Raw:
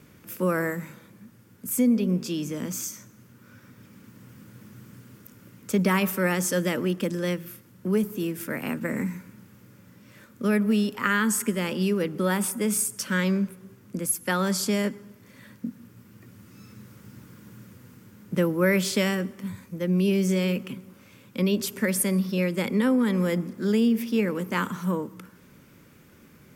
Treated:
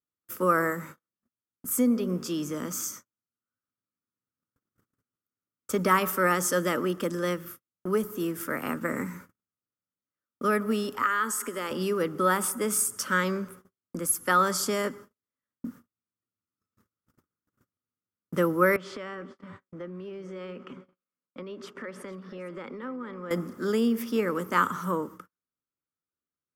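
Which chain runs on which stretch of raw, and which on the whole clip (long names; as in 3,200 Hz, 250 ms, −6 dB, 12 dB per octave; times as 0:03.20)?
0:11.02–0:11.71: high-pass filter 290 Hz + downward compressor 2.5 to 1, threshold −28 dBFS
0:18.76–0:23.31: band-pass filter 160–2,700 Hz + downward compressor 4 to 1, threshold −35 dBFS + single-tap delay 456 ms −16 dB
whole clip: noise gate −41 dBFS, range −45 dB; thirty-one-band graphic EQ 125 Hz −10 dB, 200 Hz −9 dB, 1,250 Hz +11 dB, 2,500 Hz −7 dB, 4,000 Hz −5 dB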